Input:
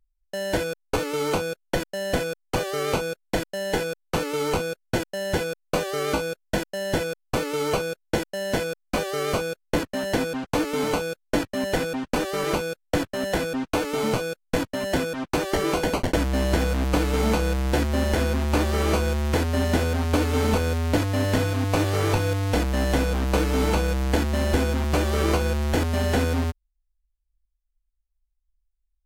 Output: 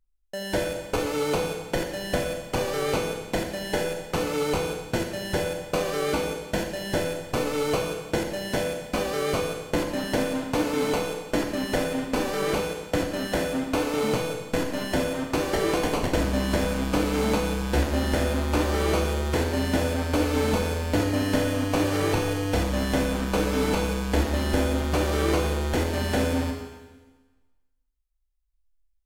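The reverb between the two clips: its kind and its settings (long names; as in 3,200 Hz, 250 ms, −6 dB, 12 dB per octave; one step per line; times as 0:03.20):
four-comb reverb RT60 1.3 s, combs from 30 ms, DRR 3 dB
level −2.5 dB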